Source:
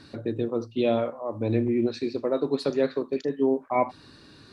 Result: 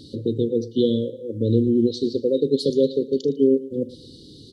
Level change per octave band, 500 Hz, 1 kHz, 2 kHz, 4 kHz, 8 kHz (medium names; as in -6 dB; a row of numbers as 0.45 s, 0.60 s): +4.5 dB, under -40 dB, under -40 dB, +7.0 dB, no reading